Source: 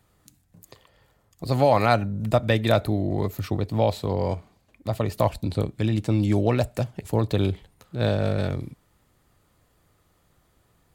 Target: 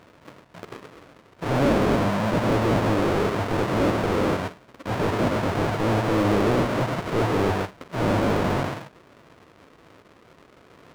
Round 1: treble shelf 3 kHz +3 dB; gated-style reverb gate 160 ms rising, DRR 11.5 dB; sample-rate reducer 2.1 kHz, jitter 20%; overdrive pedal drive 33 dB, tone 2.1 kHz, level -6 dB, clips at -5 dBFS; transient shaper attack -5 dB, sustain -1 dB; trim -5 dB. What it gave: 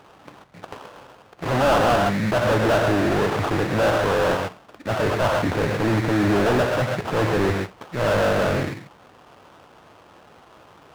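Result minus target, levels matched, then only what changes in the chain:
sample-rate reducer: distortion -8 dB
change: sample-rate reducer 820 Hz, jitter 20%

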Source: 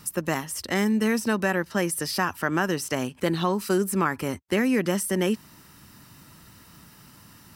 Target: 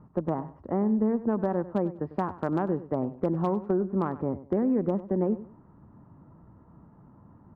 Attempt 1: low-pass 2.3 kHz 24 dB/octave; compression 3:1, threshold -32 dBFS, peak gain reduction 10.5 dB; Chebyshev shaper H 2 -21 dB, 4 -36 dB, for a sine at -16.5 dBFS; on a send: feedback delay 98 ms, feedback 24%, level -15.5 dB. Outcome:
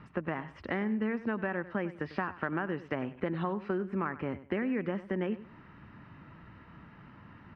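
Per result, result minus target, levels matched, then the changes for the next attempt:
2 kHz band +16.5 dB; compression: peak gain reduction +7 dB
change: low-pass 960 Hz 24 dB/octave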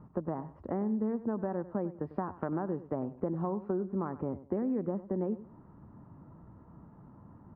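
compression: peak gain reduction +6.5 dB
change: compression 3:1, threshold -22 dBFS, peak gain reduction 3 dB

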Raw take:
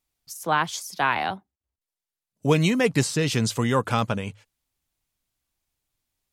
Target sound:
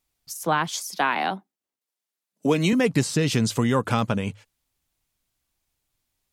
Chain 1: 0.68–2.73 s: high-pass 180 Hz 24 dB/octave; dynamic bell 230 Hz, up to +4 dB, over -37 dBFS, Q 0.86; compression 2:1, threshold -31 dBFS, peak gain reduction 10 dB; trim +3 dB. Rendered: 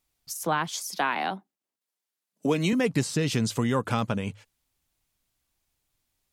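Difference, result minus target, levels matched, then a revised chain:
compression: peak gain reduction +4 dB
0.68–2.73 s: high-pass 180 Hz 24 dB/octave; dynamic bell 230 Hz, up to +4 dB, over -37 dBFS, Q 0.86; compression 2:1, threshold -23.5 dBFS, peak gain reduction 6.5 dB; trim +3 dB

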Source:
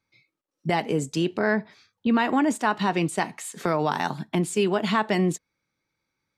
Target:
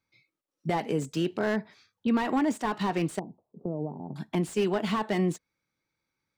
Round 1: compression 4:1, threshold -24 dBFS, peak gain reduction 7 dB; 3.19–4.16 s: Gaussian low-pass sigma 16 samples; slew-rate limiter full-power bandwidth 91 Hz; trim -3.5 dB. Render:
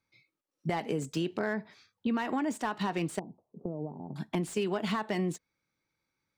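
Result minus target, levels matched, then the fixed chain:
compression: peak gain reduction +7 dB
3.19–4.16 s: Gaussian low-pass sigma 16 samples; slew-rate limiter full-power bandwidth 91 Hz; trim -3.5 dB

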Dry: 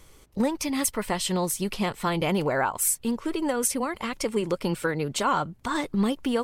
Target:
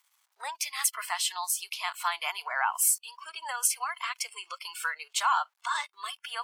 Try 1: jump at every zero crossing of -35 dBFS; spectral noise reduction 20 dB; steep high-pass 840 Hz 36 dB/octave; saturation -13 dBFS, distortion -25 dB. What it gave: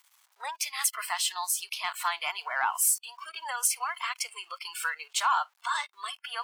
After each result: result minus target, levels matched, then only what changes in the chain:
saturation: distortion +18 dB; jump at every zero crossing: distortion +7 dB
change: saturation -3 dBFS, distortion -43 dB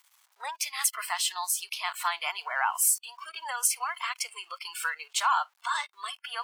jump at every zero crossing: distortion +7 dB
change: jump at every zero crossing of -43 dBFS

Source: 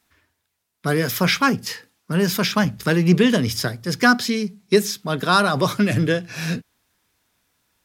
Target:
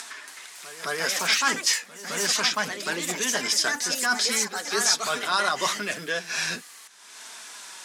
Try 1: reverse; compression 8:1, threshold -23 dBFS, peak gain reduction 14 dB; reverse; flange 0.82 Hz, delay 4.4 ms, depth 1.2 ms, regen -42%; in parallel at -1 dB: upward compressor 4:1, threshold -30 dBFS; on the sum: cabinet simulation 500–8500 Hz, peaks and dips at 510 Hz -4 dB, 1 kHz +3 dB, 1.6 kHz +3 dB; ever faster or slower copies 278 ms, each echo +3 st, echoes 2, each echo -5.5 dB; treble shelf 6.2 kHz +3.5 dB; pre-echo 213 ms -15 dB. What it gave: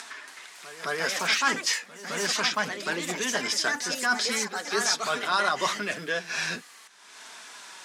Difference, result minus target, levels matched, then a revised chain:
8 kHz band -3.0 dB
reverse; compression 8:1, threshold -23 dBFS, peak gain reduction 14 dB; reverse; flange 0.82 Hz, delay 4.4 ms, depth 1.2 ms, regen -42%; in parallel at -1 dB: upward compressor 4:1, threshold -30 dBFS; on the sum: cabinet simulation 500–8500 Hz, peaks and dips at 510 Hz -4 dB, 1 kHz +3 dB, 1.6 kHz +3 dB; ever faster or slower copies 278 ms, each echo +3 st, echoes 2, each echo -5.5 dB; treble shelf 6.2 kHz +13.5 dB; pre-echo 213 ms -15 dB

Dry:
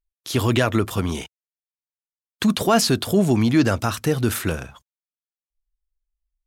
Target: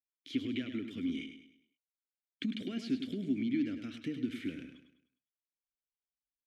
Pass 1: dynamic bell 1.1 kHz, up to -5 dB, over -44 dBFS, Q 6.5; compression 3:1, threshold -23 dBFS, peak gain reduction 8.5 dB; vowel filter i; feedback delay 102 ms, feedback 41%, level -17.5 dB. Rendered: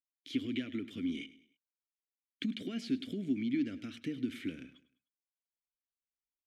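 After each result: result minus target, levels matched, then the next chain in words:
echo-to-direct -8.5 dB; 8 kHz band +2.5 dB
dynamic bell 1.1 kHz, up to -5 dB, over -44 dBFS, Q 6.5; compression 3:1, threshold -23 dBFS, peak gain reduction 8.5 dB; vowel filter i; feedback delay 102 ms, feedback 41%, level -9 dB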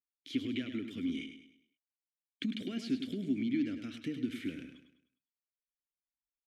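8 kHz band +2.5 dB
dynamic bell 1.1 kHz, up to -5 dB, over -44 dBFS, Q 6.5; compression 3:1, threshold -23 dBFS, peak gain reduction 8.5 dB; vowel filter i; treble shelf 7.1 kHz -5.5 dB; feedback delay 102 ms, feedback 41%, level -9 dB

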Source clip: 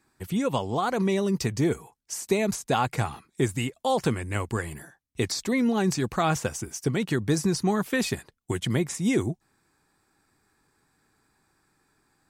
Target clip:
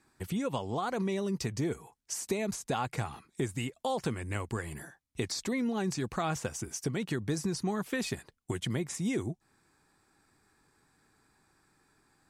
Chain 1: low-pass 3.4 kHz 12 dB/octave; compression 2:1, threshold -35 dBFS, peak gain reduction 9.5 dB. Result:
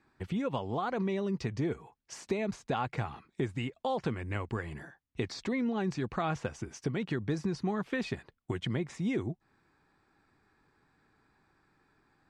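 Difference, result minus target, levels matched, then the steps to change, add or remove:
8 kHz band -12.0 dB
change: low-pass 13 kHz 12 dB/octave

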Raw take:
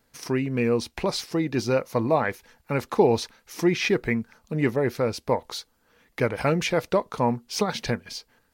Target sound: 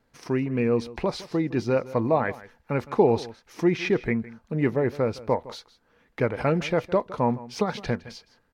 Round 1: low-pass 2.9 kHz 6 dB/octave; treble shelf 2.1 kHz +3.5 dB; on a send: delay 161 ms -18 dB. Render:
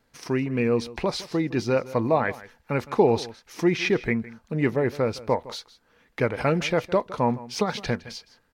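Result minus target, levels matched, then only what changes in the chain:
4 kHz band +4.5 dB
change: treble shelf 2.1 kHz -3 dB

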